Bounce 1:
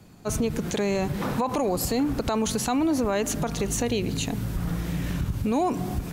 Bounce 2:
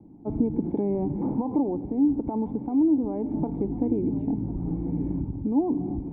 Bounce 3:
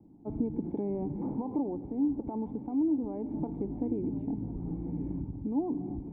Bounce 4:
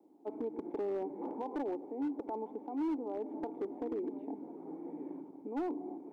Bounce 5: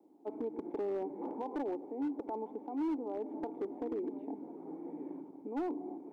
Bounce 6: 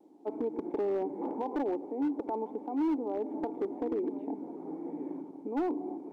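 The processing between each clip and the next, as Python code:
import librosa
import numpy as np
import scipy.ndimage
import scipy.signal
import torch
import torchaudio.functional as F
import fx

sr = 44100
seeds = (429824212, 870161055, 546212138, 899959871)

y1 = fx.formant_cascade(x, sr, vowel='u')
y1 = y1 + 10.0 ** (-17.5 / 20.0) * np.pad(y1, (int(1049 * sr / 1000.0), 0))[:len(y1)]
y1 = fx.rider(y1, sr, range_db=3, speed_s=0.5)
y1 = F.gain(torch.from_numpy(y1), 7.5).numpy()
y2 = y1 + 10.0 ** (-19.0 / 20.0) * np.pad(y1, (int(608 * sr / 1000.0), 0))[:len(y1)]
y2 = F.gain(torch.from_numpy(y2), -7.0).numpy()
y3 = scipy.signal.sosfilt(scipy.signal.butter(4, 360.0, 'highpass', fs=sr, output='sos'), y2)
y3 = np.clip(y3, -10.0 ** (-33.0 / 20.0), 10.0 ** (-33.0 / 20.0))
y3 = F.gain(torch.from_numpy(y3), 2.0).numpy()
y4 = y3
y5 = fx.vibrato(y4, sr, rate_hz=0.56, depth_cents=11.0)
y5 = np.interp(np.arange(len(y5)), np.arange(len(y5))[::2], y5[::2])
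y5 = F.gain(torch.from_numpy(y5), 5.0).numpy()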